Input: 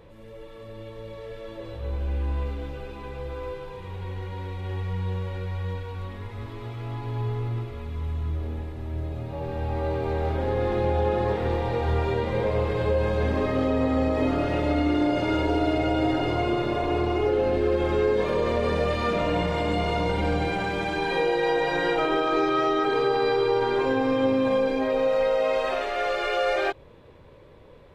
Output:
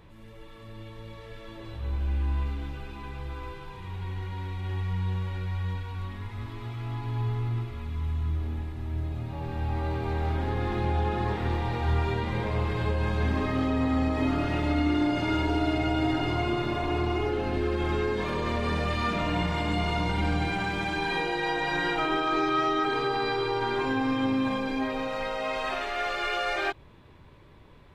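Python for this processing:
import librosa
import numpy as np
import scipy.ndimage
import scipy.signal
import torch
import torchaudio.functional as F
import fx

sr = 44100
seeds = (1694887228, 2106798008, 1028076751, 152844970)

y = fx.peak_eq(x, sr, hz=510.0, db=-13.5, octaves=0.56)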